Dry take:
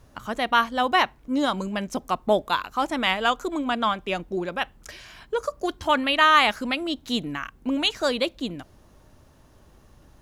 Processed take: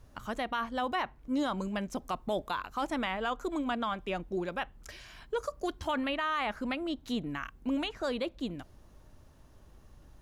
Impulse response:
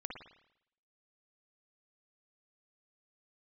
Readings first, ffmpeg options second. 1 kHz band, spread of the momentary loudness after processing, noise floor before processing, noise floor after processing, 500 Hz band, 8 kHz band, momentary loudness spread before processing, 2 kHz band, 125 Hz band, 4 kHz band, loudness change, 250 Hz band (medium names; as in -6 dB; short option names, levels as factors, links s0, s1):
-11.0 dB, 7 LU, -55 dBFS, -58 dBFS, -8.5 dB, -10.5 dB, 13 LU, -12.0 dB, -5.0 dB, -14.0 dB, -10.0 dB, -6.0 dB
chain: -filter_complex "[0:a]lowshelf=f=69:g=8,acrossover=split=2200[s0][s1];[s0]alimiter=limit=0.126:level=0:latency=1:release=23[s2];[s1]acompressor=threshold=0.0126:ratio=6[s3];[s2][s3]amix=inputs=2:normalize=0,volume=0.501"